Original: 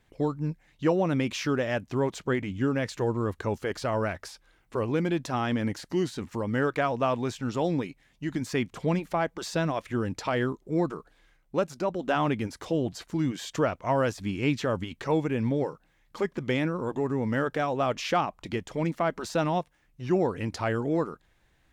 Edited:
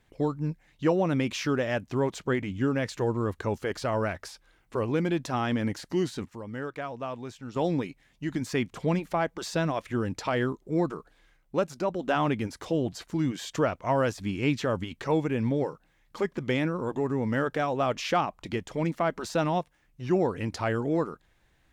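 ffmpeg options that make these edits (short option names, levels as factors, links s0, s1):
-filter_complex "[0:a]asplit=3[s0][s1][s2];[s0]atrim=end=6.252[s3];[s1]atrim=start=6.248:end=7.562,asetpts=PTS-STARTPTS,volume=0.355[s4];[s2]atrim=start=7.558[s5];[s3][s4]acrossfade=d=0.004:c1=hsin:c2=hsin[s6];[s6][s5]acrossfade=d=0.004:c1=hsin:c2=hsin"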